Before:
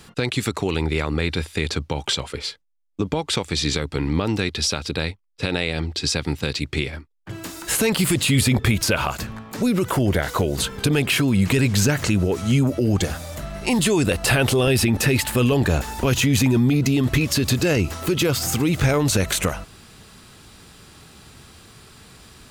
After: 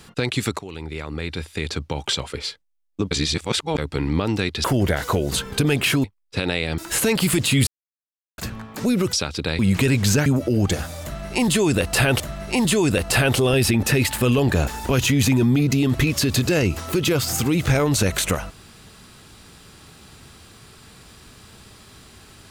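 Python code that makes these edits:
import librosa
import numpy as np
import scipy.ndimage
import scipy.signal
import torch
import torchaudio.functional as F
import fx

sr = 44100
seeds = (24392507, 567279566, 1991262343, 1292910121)

y = fx.edit(x, sr, fx.fade_in_from(start_s=0.59, length_s=1.63, floor_db=-14.5),
    fx.reverse_span(start_s=3.11, length_s=0.67),
    fx.swap(start_s=4.64, length_s=0.46, other_s=9.9, other_length_s=1.4),
    fx.cut(start_s=5.84, length_s=1.71),
    fx.silence(start_s=8.44, length_s=0.71),
    fx.cut(start_s=11.97, length_s=0.6),
    fx.repeat(start_s=13.34, length_s=1.17, count=2), tone=tone)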